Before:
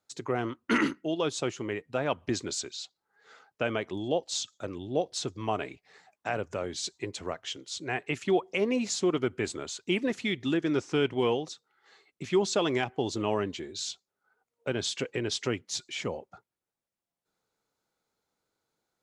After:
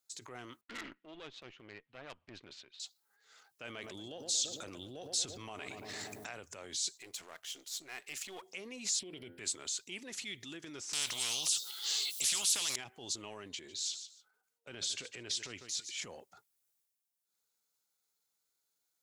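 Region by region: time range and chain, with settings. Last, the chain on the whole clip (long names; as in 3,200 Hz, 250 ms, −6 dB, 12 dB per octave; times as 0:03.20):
0:00.61–0:02.80: mu-law and A-law mismatch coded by A + low-pass filter 2,900 Hz 24 dB per octave + tube saturation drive 24 dB, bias 0.8
0:03.65–0:06.27: feedback echo with a low-pass in the loop 113 ms, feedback 70%, low-pass 950 Hz, level −13 dB + envelope flattener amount 70%
0:06.97–0:08.42: gain on one half-wave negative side −7 dB + low-shelf EQ 190 Hz −11.5 dB
0:08.99–0:09.39: high-pass filter 51 Hz + phaser with its sweep stopped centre 2,900 Hz, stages 4 + hum removal 86.06 Hz, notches 23
0:10.93–0:12.76: high shelf with overshoot 2,600 Hz +10.5 dB, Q 3 + every bin compressed towards the loudest bin 4 to 1
0:13.49–0:15.96: high-shelf EQ 7,700 Hz −7 dB + repeating echo 148 ms, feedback 20%, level −17.5 dB
whole clip: downward compressor, threshold −30 dBFS; transient designer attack −6 dB, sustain +7 dB; first-order pre-emphasis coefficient 0.9; level +4.5 dB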